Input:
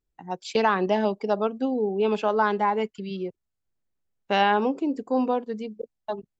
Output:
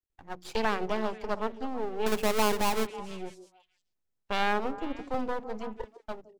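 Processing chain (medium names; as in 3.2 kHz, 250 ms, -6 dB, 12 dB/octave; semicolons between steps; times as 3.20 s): 2.06–2.87 s: square wave that keeps the level; hum notches 60/120/180/240/300 Hz; half-wave rectifier; repeats whose band climbs or falls 163 ms, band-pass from 370 Hz, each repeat 1.4 oct, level -10 dB; 5.14–5.97 s: three bands compressed up and down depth 70%; trim -3.5 dB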